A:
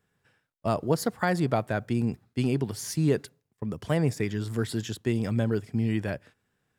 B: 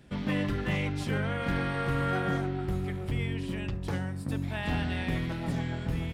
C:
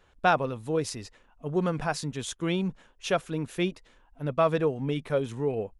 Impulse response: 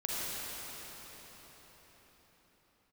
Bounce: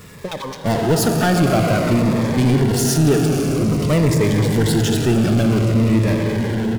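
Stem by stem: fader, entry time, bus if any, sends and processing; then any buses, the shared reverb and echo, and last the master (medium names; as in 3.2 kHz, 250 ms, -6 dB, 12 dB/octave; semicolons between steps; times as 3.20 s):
+1.5 dB, 0.00 s, send -6.5 dB, none
-11.0 dB, 0.90 s, no send, none
-12.5 dB, 0.00 s, send -18.5 dB, small samples zeroed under -32 dBFS; harmonic tremolo 8.3 Hz, depth 100%, crossover 980 Hz; step-sequenced low-pass 9.5 Hz 290–5700 Hz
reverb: on, RT60 5.3 s, pre-delay 37 ms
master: power-law waveshaper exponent 0.5; Shepard-style phaser falling 0.51 Hz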